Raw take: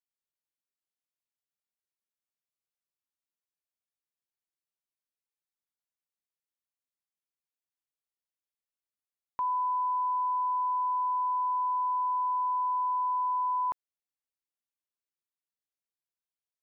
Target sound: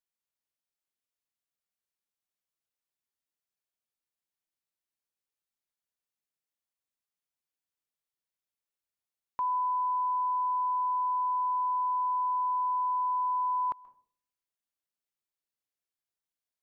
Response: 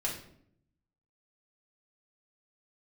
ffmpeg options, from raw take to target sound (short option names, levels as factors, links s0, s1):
-filter_complex "[0:a]asplit=2[s0][s1];[1:a]atrim=start_sample=2205,asetrate=70560,aresample=44100,adelay=129[s2];[s1][s2]afir=irnorm=-1:irlink=0,volume=0.0944[s3];[s0][s3]amix=inputs=2:normalize=0"